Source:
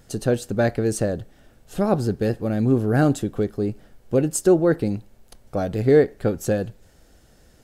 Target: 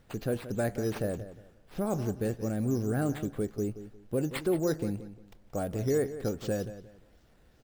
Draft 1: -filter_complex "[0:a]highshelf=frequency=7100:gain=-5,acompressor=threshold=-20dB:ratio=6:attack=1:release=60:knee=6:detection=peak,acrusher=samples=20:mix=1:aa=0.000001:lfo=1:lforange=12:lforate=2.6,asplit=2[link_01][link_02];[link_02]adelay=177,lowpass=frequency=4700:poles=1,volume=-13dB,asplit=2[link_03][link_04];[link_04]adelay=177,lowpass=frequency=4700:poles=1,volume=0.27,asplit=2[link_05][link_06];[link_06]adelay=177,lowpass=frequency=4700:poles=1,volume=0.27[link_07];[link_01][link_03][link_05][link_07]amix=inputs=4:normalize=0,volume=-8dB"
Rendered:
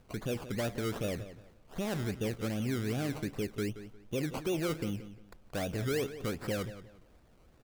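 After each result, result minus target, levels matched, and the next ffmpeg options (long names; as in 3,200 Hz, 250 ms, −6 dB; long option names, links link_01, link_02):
sample-and-hold swept by an LFO: distortion +10 dB; downward compressor: peak gain reduction +5.5 dB
-filter_complex "[0:a]highshelf=frequency=7100:gain=-5,acompressor=threshold=-20dB:ratio=6:attack=1:release=60:knee=6:detection=peak,acrusher=samples=6:mix=1:aa=0.000001:lfo=1:lforange=3.6:lforate=2.6,asplit=2[link_01][link_02];[link_02]adelay=177,lowpass=frequency=4700:poles=1,volume=-13dB,asplit=2[link_03][link_04];[link_04]adelay=177,lowpass=frequency=4700:poles=1,volume=0.27,asplit=2[link_05][link_06];[link_06]adelay=177,lowpass=frequency=4700:poles=1,volume=0.27[link_07];[link_01][link_03][link_05][link_07]amix=inputs=4:normalize=0,volume=-8dB"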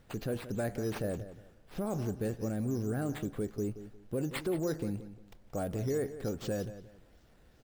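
downward compressor: peak gain reduction +5.5 dB
-filter_complex "[0:a]highshelf=frequency=7100:gain=-5,acompressor=threshold=-13.5dB:ratio=6:attack=1:release=60:knee=6:detection=peak,acrusher=samples=6:mix=1:aa=0.000001:lfo=1:lforange=3.6:lforate=2.6,asplit=2[link_01][link_02];[link_02]adelay=177,lowpass=frequency=4700:poles=1,volume=-13dB,asplit=2[link_03][link_04];[link_04]adelay=177,lowpass=frequency=4700:poles=1,volume=0.27,asplit=2[link_05][link_06];[link_06]adelay=177,lowpass=frequency=4700:poles=1,volume=0.27[link_07];[link_01][link_03][link_05][link_07]amix=inputs=4:normalize=0,volume=-8dB"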